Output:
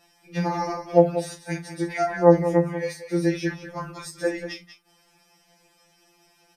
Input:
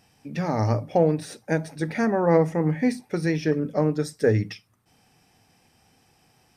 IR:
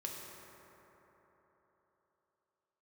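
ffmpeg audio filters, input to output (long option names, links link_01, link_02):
-af "equalizer=frequency=150:width_type=o:width=0.91:gain=-10,aecho=1:1:34.99|189.5:0.282|0.282,afftfilt=real='re*2.83*eq(mod(b,8),0)':imag='im*2.83*eq(mod(b,8),0)':win_size=2048:overlap=0.75,volume=3.5dB"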